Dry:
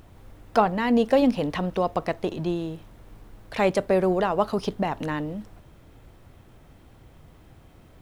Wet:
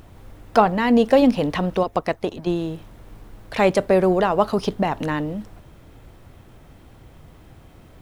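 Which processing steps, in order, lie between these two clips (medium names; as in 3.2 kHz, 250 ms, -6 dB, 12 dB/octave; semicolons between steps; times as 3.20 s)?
1.83–2.47 s: harmonic-percussive split harmonic -17 dB; trim +4.5 dB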